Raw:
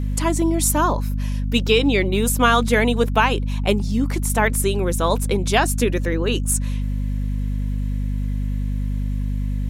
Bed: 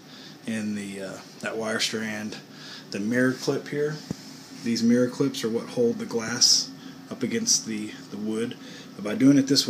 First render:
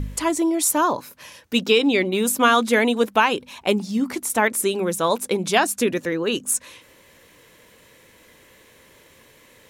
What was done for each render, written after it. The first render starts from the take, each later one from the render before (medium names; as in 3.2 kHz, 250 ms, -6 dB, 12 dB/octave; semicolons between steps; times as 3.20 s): de-hum 50 Hz, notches 5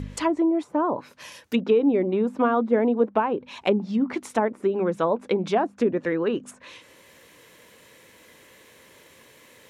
low-pass that closes with the level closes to 740 Hz, closed at -16.5 dBFS; high-pass 120 Hz 6 dB/octave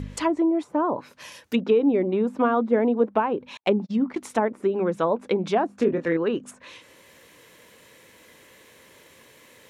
3.57–4.18 s: gate -33 dBFS, range -45 dB; 5.67–6.17 s: doubling 24 ms -6 dB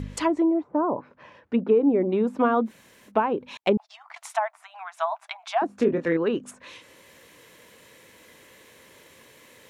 0.53–2.08 s: low-pass 1.1 kHz -> 1.8 kHz; 2.68–3.09 s: room tone, crossfade 0.06 s; 3.77–5.62 s: brick-wall FIR high-pass 620 Hz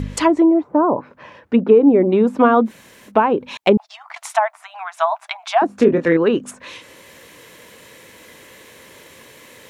trim +8.5 dB; peak limiter -1 dBFS, peak gain reduction 1.5 dB